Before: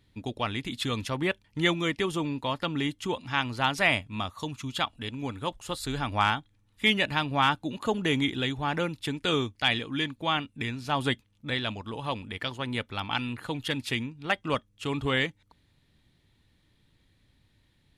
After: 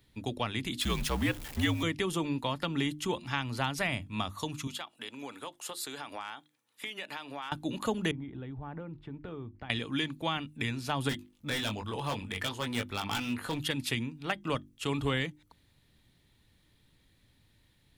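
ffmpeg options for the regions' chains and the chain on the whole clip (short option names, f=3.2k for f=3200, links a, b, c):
-filter_complex "[0:a]asettb=1/sr,asplit=3[a][b][c];[a]atrim=end=0.814[d];[b]atrim=start=0.81:end=1.83,asetpts=PTS-STARTPTS,afade=t=in:d=0.004:c=qsin,afade=t=out:st=1.016:d=0.004:c=qsin,aeval=exprs='val(0)+0.5*0.0126*sgn(val(0))':c=same,afreqshift=-67[e];[c]atrim=start=1.826[f];[d][e]acrossfade=d=0.004:c1=hsin:c2=qsin[g];[g][f]acrossfade=d=0.004:c1=qsin:c2=hsin,asettb=1/sr,asplit=3[h][i][j];[h]atrim=end=4.674[k];[i]atrim=start=4.67:end=7.52,asetpts=PTS-STARTPTS,afade=t=in:d=0.004:c=qsin,afade=t=out:st=2.846:d=0.004:c=qsin,highpass=370,acompressor=threshold=-36dB:ratio=8:attack=3.2:release=140:knee=1:detection=peak[l];[j]atrim=start=7.516[m];[k][l]acrossfade=d=0.004:c1=hsin:c2=qsin[n];[n][m]acrossfade=d=0.004:c1=qsin:c2=hsin,asettb=1/sr,asplit=3[o][p][q];[o]atrim=end=8.114[r];[p]atrim=start=8.11:end=9.7,asetpts=PTS-STARTPTS,afade=t=in:d=0.004:c=qsin,afade=t=out:st=1.586:d=0.004:c=qsin,lowshelf=f=180:g=9,acompressor=threshold=-39dB:ratio=4:attack=3.2:release=140:knee=1:detection=peak,lowpass=1.2k[s];[q]atrim=start=9.696[t];[r][s]acrossfade=d=0.004:c1=hsin:c2=qsin[u];[u][t]acrossfade=d=0.004:c1=qsin:c2=hsin,asettb=1/sr,asplit=3[v][w][x];[v]atrim=end=11.094[y];[w]atrim=start=11.09:end=13.6,asetpts=PTS-STARTPTS,afade=t=in:d=0.004:c=qsin,afade=t=out:st=2.506:d=0.004:c=qsin,asplit=2[z][aa];[aa]adelay=20,volume=-5dB[ab];[z][ab]amix=inputs=2:normalize=0,atrim=end_sample=110691,asoftclip=type=hard:threshold=-27dB[ac];[x]atrim=start=13.596[ad];[y][ac]acrossfade=d=0.004:c1=hsin:c2=qsin[ae];[ae][ad]acrossfade=d=0.004:c1=qsin:c2=hsin,highshelf=f=9.6k:g=10,bandreject=f=50:t=h:w=6,bandreject=f=100:t=h:w=6,bandreject=f=150:t=h:w=6,bandreject=f=200:t=h:w=6,bandreject=f=250:t=h:w=6,bandreject=f=300:t=h:w=6,bandreject=f=350:t=h:w=6,acrossover=split=250[af][ag];[ag]acompressor=threshold=-29dB:ratio=5[ah];[af][ah]amix=inputs=2:normalize=0"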